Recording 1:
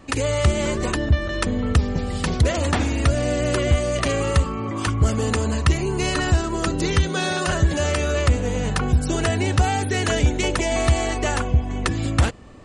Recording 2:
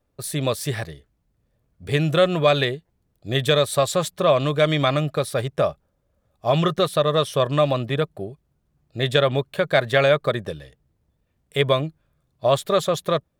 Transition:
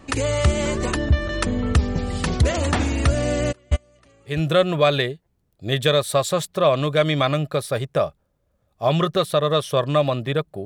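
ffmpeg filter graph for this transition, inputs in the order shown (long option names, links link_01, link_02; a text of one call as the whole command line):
ffmpeg -i cue0.wav -i cue1.wav -filter_complex "[0:a]asplit=3[link_01][link_02][link_03];[link_01]afade=type=out:start_time=3.51:duration=0.02[link_04];[link_02]agate=range=-33dB:threshold=-15dB:ratio=16:release=100:detection=peak,afade=type=in:start_time=3.51:duration=0.02,afade=type=out:start_time=4.41:duration=0.02[link_05];[link_03]afade=type=in:start_time=4.41:duration=0.02[link_06];[link_04][link_05][link_06]amix=inputs=3:normalize=0,apad=whole_dur=10.65,atrim=end=10.65,atrim=end=4.41,asetpts=PTS-STARTPTS[link_07];[1:a]atrim=start=1.88:end=8.28,asetpts=PTS-STARTPTS[link_08];[link_07][link_08]acrossfade=duration=0.16:curve1=tri:curve2=tri" out.wav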